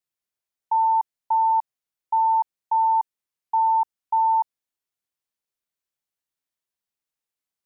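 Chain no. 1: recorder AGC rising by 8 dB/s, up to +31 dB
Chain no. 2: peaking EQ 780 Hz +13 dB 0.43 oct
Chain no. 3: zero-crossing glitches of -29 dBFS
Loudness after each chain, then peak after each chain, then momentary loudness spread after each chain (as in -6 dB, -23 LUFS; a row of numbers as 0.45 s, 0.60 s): -22.5 LUFS, -15.5 LUFS, -24.5 LUFS; -16.0 dBFS, -8.0 dBFS, -16.0 dBFS; 6 LU, 6 LU, 10 LU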